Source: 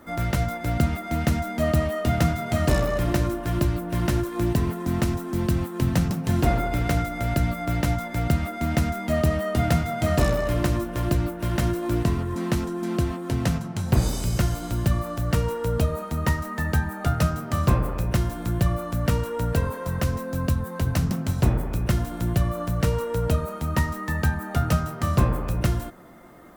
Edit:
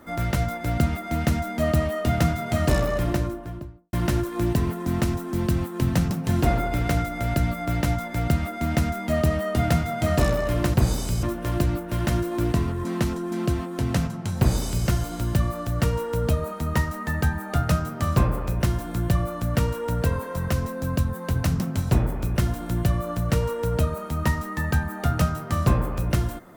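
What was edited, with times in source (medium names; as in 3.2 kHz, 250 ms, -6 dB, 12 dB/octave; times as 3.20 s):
2.91–3.93 s: studio fade out
13.89–14.38 s: copy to 10.74 s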